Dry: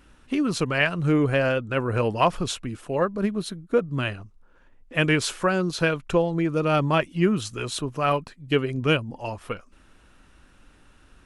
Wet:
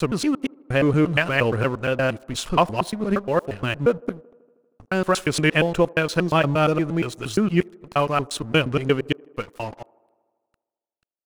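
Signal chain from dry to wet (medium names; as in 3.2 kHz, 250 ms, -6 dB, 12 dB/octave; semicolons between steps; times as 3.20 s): slices played last to first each 117 ms, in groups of 6; gate with hold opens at -45 dBFS; crossover distortion -43 dBFS; on a send: feedback echo behind a band-pass 79 ms, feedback 71%, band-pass 510 Hz, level -23.5 dB; on the sum: trim +3 dB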